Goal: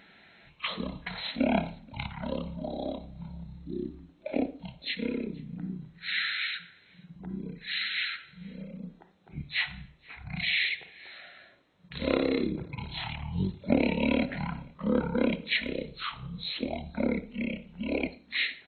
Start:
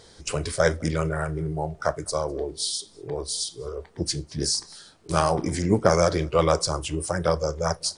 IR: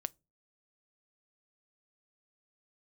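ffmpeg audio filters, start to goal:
-filter_complex "[0:a]highpass=f=710:p=1[a];[1:a]atrim=start_sample=2205,asetrate=52920,aresample=44100[b];[a][b]afir=irnorm=-1:irlink=0,asetrate=18846,aresample=44100,asplit=2[c][d];[d]adelay=110,highpass=300,lowpass=3.4k,asoftclip=type=hard:threshold=-18.5dB,volume=-25dB[e];[c][e]amix=inputs=2:normalize=0"

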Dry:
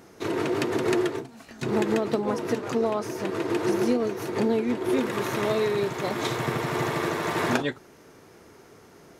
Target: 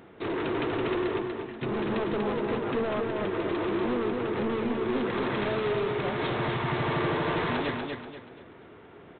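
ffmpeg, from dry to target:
-af "aresample=8000,asoftclip=type=hard:threshold=-27.5dB,aresample=44100,aecho=1:1:241|482|723|964:0.631|0.221|0.0773|0.0271"

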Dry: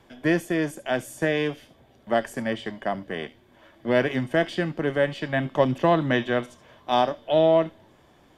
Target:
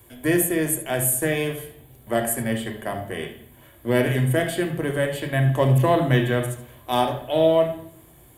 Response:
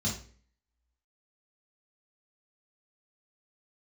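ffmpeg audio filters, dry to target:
-filter_complex "[0:a]aexciter=amount=10.4:drive=8.1:freq=8.1k,asplit=2[a][b];[1:a]atrim=start_sample=2205,asetrate=26460,aresample=44100,lowpass=3.9k[c];[b][c]afir=irnorm=-1:irlink=0,volume=-13dB[d];[a][d]amix=inputs=2:normalize=0"

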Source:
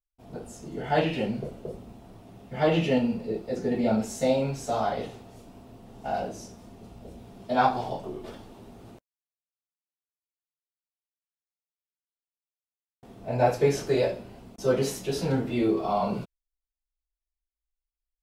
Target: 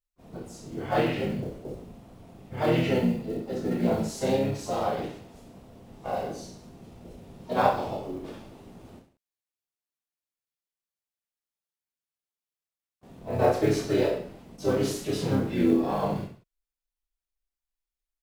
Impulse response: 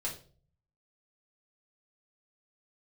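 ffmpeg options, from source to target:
-filter_complex "[0:a]acrusher=bits=8:mode=log:mix=0:aa=0.000001,aecho=1:1:30|63|99.3|139.2|183.2:0.631|0.398|0.251|0.158|0.1,asplit=3[a][b][c];[b]asetrate=33038,aresample=44100,atempo=1.33484,volume=-2dB[d];[c]asetrate=66075,aresample=44100,atempo=0.66742,volume=-16dB[e];[a][d][e]amix=inputs=3:normalize=0,volume=-4.5dB"

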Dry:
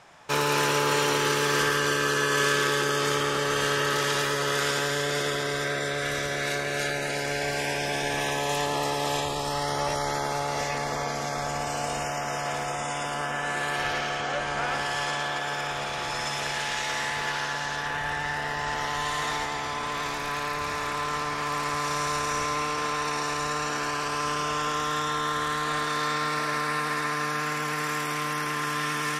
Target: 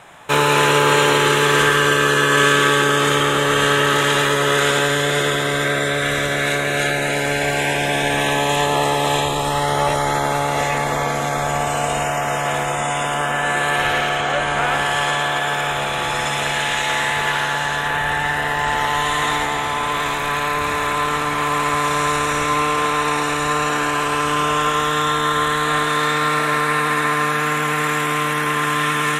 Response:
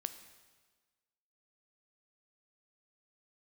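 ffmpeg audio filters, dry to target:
-filter_complex "[0:a]asplit=2[a][b];[b]asuperstop=centerf=5200:order=8:qfactor=2.8[c];[1:a]atrim=start_sample=2205,highshelf=f=8.1k:g=9.5[d];[c][d]afir=irnorm=-1:irlink=0,volume=9.5dB[e];[a][e]amix=inputs=2:normalize=0,acrossover=split=8900[f][g];[g]acompressor=threshold=-39dB:ratio=4:attack=1:release=60[h];[f][h]amix=inputs=2:normalize=0,volume=-1.5dB"

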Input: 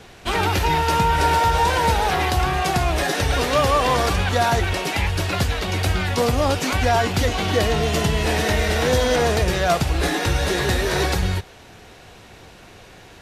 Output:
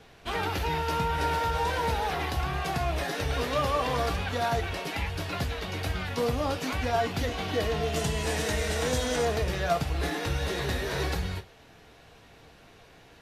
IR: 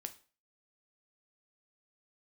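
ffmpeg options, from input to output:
-filter_complex "[0:a]asetnsamples=n=441:p=0,asendcmd='7.96 equalizer g 6.5;9.25 equalizer g -4',equalizer=f=7.9k:w=1.2:g=-5[a];[1:a]atrim=start_sample=2205,asetrate=83790,aresample=44100[b];[a][b]afir=irnorm=-1:irlink=0"

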